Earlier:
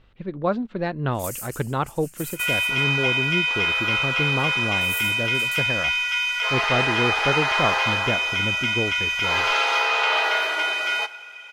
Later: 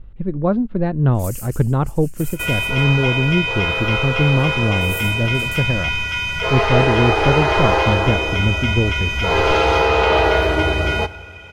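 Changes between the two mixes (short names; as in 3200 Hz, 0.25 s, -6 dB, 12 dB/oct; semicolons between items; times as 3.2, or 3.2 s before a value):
speech: add tilt -4 dB/oct; second sound: remove HPF 1200 Hz 12 dB/oct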